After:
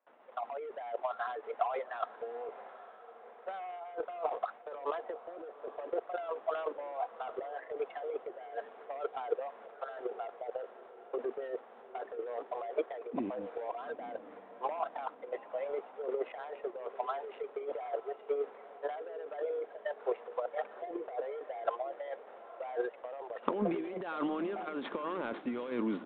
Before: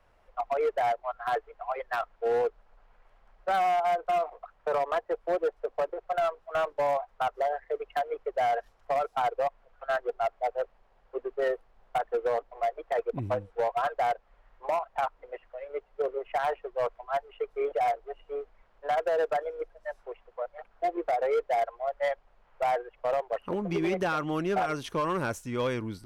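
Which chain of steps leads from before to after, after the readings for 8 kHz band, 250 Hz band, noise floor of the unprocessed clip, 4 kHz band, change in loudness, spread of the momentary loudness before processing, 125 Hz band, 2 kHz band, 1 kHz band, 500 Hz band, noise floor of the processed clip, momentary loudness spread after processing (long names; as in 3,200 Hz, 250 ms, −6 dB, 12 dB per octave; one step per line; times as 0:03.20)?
can't be measured, −3.0 dB, −64 dBFS, below −10 dB, −8.5 dB, 11 LU, below −10 dB, −10.5 dB, −10.0 dB, −7.5 dB, −54 dBFS, 9 LU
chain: running median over 15 samples
noise gate with hold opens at −55 dBFS
Chebyshev high-pass filter 230 Hz, order 4
compressor whose output falls as the input rises −37 dBFS, ratio −1
sample-and-hold tremolo 3.5 Hz
transient designer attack +3 dB, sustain +8 dB
feedback delay with all-pass diffusion 861 ms, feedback 48%, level −15 dB
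downsampling to 8,000 Hz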